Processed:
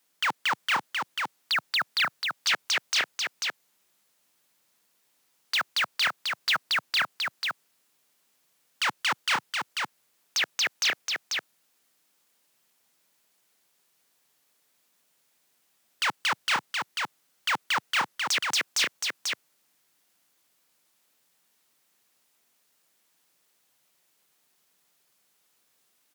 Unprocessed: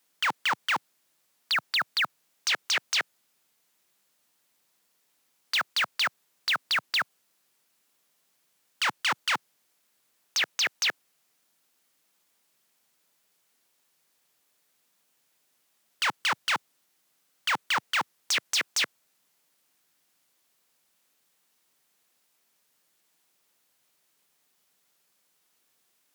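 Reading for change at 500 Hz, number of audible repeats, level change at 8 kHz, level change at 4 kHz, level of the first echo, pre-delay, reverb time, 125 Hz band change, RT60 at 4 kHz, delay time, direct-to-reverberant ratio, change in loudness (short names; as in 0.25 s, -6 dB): +1.5 dB, 1, +1.5 dB, +1.5 dB, -4.0 dB, none, none, +1.5 dB, none, 0.491 s, none, 0.0 dB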